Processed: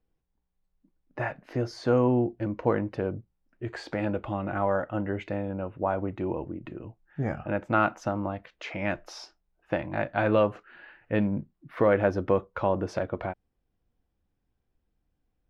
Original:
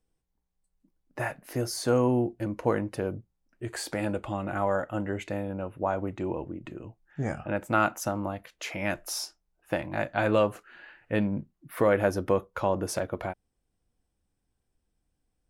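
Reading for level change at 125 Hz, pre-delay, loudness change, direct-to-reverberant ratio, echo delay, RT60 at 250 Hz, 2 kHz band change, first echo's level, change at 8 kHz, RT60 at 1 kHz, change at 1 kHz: +1.5 dB, no reverb audible, +1.0 dB, no reverb audible, no echo audible, no reverb audible, −0.5 dB, no echo audible, below −10 dB, no reverb audible, +0.5 dB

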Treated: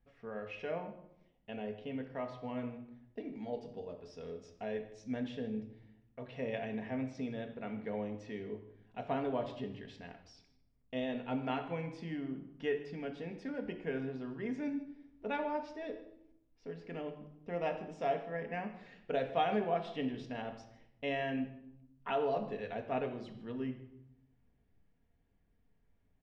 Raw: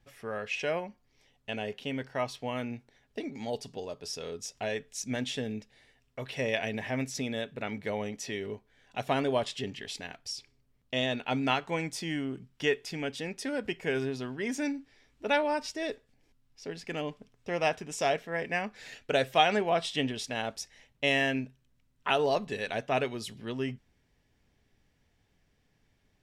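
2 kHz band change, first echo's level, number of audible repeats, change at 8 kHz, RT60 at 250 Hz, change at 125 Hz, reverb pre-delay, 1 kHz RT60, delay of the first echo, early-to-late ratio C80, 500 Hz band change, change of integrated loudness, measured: −12.0 dB, −20.0 dB, 1, below −25 dB, 1.1 s, −6.0 dB, 4 ms, 0.75 s, 154 ms, 11.5 dB, −6.0 dB, −7.0 dB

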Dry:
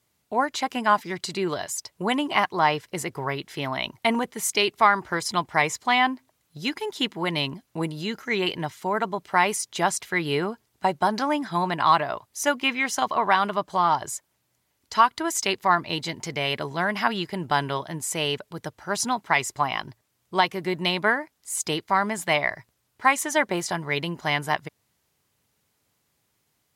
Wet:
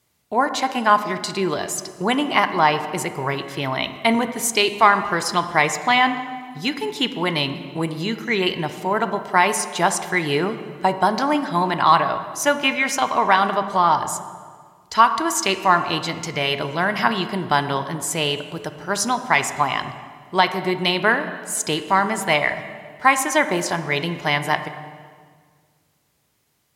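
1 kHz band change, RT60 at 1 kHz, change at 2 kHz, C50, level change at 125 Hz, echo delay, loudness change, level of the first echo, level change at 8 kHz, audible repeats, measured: +4.5 dB, 1.7 s, +4.5 dB, 10.5 dB, +4.5 dB, no echo audible, +4.5 dB, no echo audible, +4.0 dB, no echo audible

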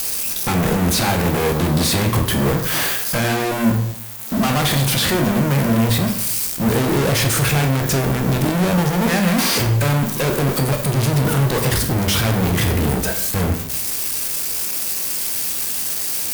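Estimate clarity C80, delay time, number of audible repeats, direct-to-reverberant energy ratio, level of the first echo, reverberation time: 11.0 dB, no echo audible, no echo audible, 4.0 dB, no echo audible, 0.70 s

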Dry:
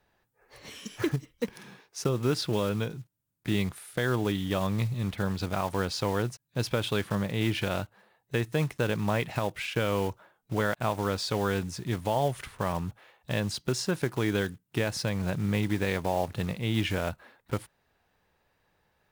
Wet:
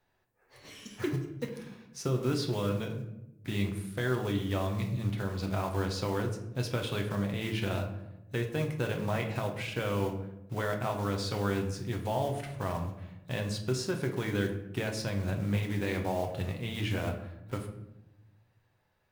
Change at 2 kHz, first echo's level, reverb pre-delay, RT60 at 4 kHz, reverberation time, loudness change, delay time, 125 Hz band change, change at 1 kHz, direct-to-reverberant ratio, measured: −4.0 dB, no echo audible, 8 ms, 0.55 s, 0.95 s, −3.0 dB, no echo audible, −1.5 dB, −4.0 dB, 2.0 dB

